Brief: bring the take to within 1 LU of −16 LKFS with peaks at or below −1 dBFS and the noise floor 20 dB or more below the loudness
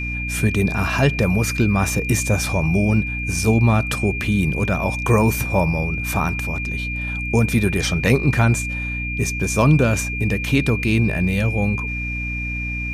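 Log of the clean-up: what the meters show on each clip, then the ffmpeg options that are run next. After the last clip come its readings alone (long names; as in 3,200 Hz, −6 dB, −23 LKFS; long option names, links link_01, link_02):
mains hum 60 Hz; hum harmonics up to 300 Hz; level of the hum −25 dBFS; interfering tone 2,400 Hz; level of the tone −26 dBFS; integrated loudness −19.5 LKFS; sample peak −3.5 dBFS; target loudness −16.0 LKFS
→ -af "bandreject=frequency=60:width_type=h:width=4,bandreject=frequency=120:width_type=h:width=4,bandreject=frequency=180:width_type=h:width=4,bandreject=frequency=240:width_type=h:width=4,bandreject=frequency=300:width_type=h:width=4"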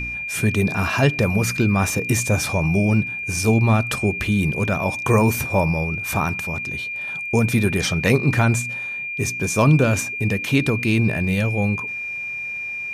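mains hum none found; interfering tone 2,400 Hz; level of the tone −26 dBFS
→ -af "bandreject=frequency=2400:width=30"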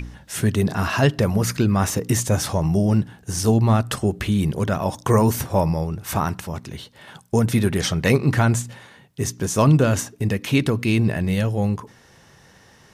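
interfering tone none found; integrated loudness −21.0 LKFS; sample peak −4.0 dBFS; target loudness −16.0 LKFS
→ -af "volume=5dB,alimiter=limit=-1dB:level=0:latency=1"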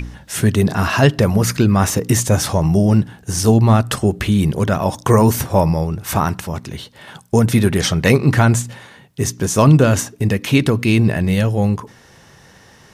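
integrated loudness −16.0 LKFS; sample peak −1.0 dBFS; background noise floor −47 dBFS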